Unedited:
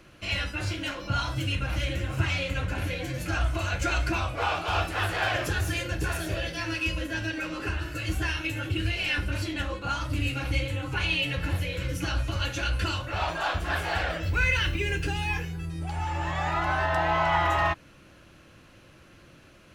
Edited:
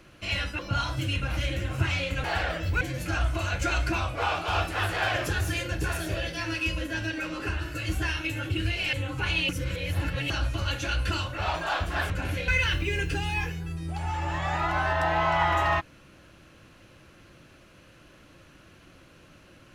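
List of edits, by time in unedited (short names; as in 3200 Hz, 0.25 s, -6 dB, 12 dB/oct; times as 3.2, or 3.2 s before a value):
0.59–0.98 cut
2.63–3.01 swap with 13.84–14.41
9.13–10.67 cut
11.23–12.04 reverse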